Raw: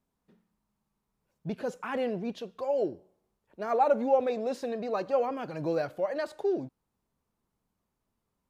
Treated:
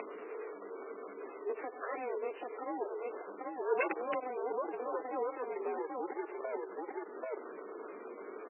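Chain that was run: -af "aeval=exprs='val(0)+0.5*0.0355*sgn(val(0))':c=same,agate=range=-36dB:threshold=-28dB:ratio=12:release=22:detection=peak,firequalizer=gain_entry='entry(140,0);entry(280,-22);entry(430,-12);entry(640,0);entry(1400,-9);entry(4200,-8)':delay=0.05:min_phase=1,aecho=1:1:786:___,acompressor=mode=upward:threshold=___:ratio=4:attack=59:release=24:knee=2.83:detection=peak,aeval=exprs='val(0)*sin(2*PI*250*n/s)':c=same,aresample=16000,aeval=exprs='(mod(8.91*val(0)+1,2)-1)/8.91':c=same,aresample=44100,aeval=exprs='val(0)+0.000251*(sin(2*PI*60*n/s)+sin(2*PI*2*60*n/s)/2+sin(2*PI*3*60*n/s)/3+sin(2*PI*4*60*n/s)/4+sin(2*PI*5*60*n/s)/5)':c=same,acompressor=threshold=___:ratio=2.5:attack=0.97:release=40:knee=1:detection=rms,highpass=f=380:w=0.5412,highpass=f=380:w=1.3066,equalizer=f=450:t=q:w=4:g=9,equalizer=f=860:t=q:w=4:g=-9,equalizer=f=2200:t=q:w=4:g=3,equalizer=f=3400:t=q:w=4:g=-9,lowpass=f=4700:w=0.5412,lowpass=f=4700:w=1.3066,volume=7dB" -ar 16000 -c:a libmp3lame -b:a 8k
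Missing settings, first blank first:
0.237, -41dB, -38dB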